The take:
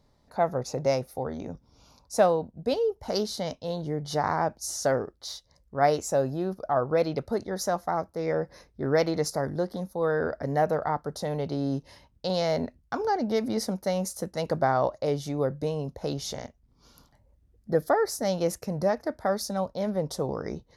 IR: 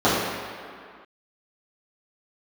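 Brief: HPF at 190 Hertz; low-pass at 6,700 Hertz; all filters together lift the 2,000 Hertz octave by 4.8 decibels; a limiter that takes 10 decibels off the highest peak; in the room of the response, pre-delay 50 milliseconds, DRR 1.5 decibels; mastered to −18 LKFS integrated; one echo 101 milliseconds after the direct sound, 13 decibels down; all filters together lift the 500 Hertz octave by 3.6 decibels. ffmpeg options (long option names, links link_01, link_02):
-filter_complex "[0:a]highpass=190,lowpass=6700,equalizer=frequency=500:width_type=o:gain=4,equalizer=frequency=2000:width_type=o:gain=6,alimiter=limit=-16dB:level=0:latency=1,aecho=1:1:101:0.224,asplit=2[link_01][link_02];[1:a]atrim=start_sample=2205,adelay=50[link_03];[link_02][link_03]afir=irnorm=-1:irlink=0,volume=-24.5dB[link_04];[link_01][link_04]amix=inputs=2:normalize=0,volume=6.5dB"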